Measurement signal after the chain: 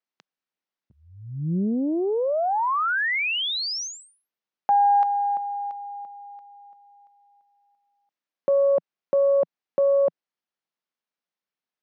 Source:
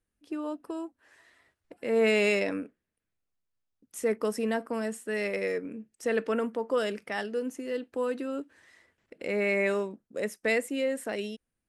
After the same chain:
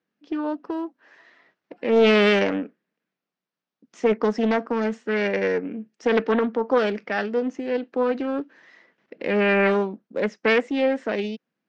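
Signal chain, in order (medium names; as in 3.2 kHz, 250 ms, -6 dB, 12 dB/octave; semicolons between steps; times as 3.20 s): elliptic band-pass 170–6100 Hz, stop band 40 dB; distance through air 130 m; loudspeaker Doppler distortion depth 0.41 ms; trim +8.5 dB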